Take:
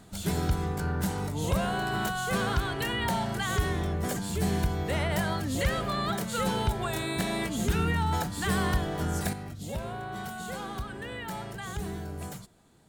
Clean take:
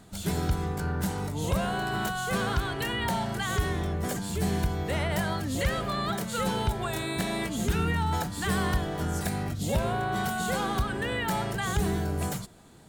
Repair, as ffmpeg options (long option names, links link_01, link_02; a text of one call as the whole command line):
ffmpeg -i in.wav -af "asetnsamples=nb_out_samples=441:pad=0,asendcmd='9.33 volume volume 8dB',volume=0dB" out.wav